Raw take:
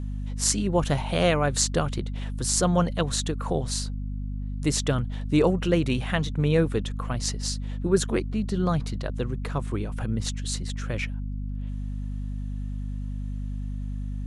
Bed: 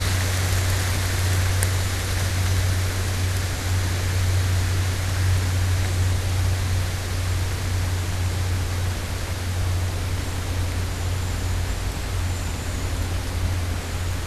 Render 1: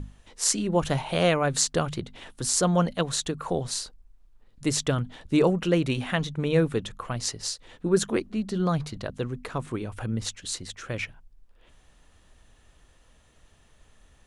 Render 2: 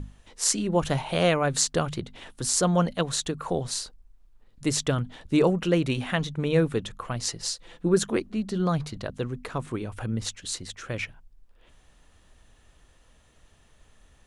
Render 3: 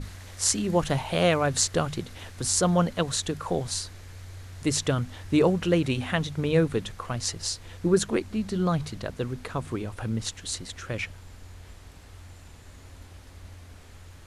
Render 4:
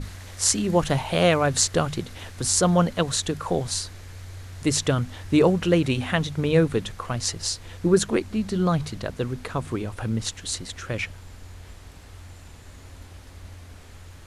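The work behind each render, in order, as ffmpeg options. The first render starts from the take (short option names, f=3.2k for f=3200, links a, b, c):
-af "bandreject=f=50:t=h:w=6,bandreject=f=100:t=h:w=6,bandreject=f=150:t=h:w=6,bandreject=f=200:t=h:w=6,bandreject=f=250:t=h:w=6"
-filter_complex "[0:a]asettb=1/sr,asplit=3[a][b][c];[a]atrim=end=7.284[d];[b]atrim=start=7.28:end=7.94,asetpts=PTS-STARTPTS,afade=t=in:d=0.004:c=qsin,afade=t=out:st=0.656:d=0.004:c=qsin,aecho=1:1:5.9:0.46,atrim=end_sample=29106[e];[c]atrim=start=7.936[f];[d][e]acrossfade=d=0.004:c1=hsin:c2=qsin[g];[g][f]acrossfade=d=0.004:c1=qsin:c2=hsin"
-filter_complex "[1:a]volume=-21.5dB[a];[0:a][a]amix=inputs=2:normalize=0"
-af "volume=3dB"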